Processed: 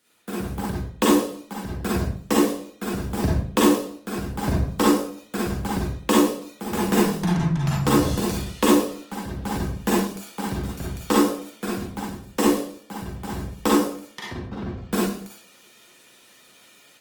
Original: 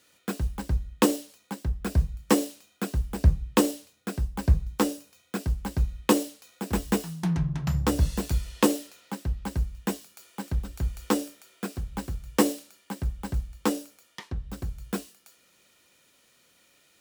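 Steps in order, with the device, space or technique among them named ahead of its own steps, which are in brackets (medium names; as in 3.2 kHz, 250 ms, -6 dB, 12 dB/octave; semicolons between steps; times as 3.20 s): 14.41–14.92 s: distance through air 240 m; far-field microphone of a smart speaker (reverberation RT60 0.55 s, pre-delay 37 ms, DRR -5 dB; high-pass 140 Hz 12 dB/octave; level rider gain up to 9 dB; trim -4 dB; Opus 24 kbps 48 kHz)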